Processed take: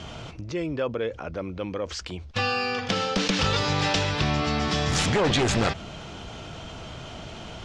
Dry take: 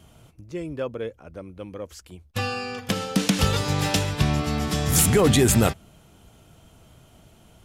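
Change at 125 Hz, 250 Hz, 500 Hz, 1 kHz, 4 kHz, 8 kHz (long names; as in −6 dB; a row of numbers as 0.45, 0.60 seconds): −4.0, −3.5, −1.5, +2.0, +2.0, −8.0 decibels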